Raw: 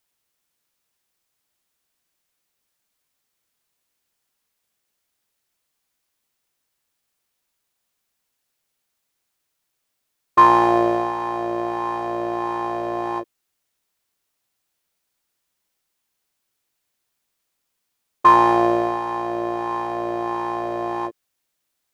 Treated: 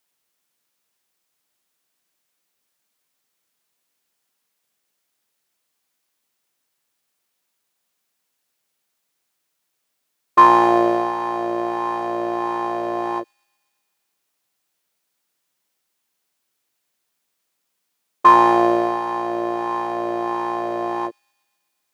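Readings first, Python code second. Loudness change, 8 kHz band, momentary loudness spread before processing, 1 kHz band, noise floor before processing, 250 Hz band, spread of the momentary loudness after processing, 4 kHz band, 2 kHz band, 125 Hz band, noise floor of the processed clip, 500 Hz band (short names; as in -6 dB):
+1.5 dB, n/a, 12 LU, +1.5 dB, -77 dBFS, +1.5 dB, 12 LU, +1.5 dB, +1.5 dB, -3.0 dB, -75 dBFS, +1.5 dB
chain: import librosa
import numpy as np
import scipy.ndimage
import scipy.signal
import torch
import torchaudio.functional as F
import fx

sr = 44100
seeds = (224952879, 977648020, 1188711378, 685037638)

y = scipy.signal.sosfilt(scipy.signal.butter(2, 140.0, 'highpass', fs=sr, output='sos'), x)
y = fx.echo_wet_highpass(y, sr, ms=125, feedback_pct=69, hz=4500.0, wet_db=-18.0)
y = y * 10.0 ** (1.5 / 20.0)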